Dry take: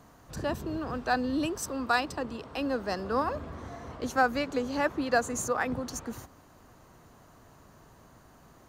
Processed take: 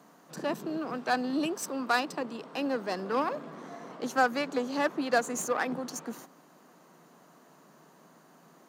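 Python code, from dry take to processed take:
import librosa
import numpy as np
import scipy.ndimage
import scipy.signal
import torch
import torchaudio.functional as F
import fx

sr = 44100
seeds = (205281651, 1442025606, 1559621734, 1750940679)

y = fx.cheby_harmonics(x, sr, harmonics=(8,), levels_db=(-24,), full_scale_db=-13.0)
y = scipy.signal.sosfilt(scipy.signal.ellip(4, 1.0, 40, 160.0, 'highpass', fs=sr, output='sos'), y)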